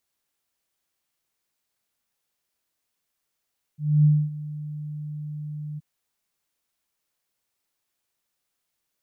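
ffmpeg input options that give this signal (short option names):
-f lavfi -i "aevalsrc='0.237*sin(2*PI*150*t)':d=2.024:s=44100,afade=t=in:d=0.264,afade=t=out:st=0.264:d=0.253:silence=0.126,afade=t=out:st=2:d=0.024"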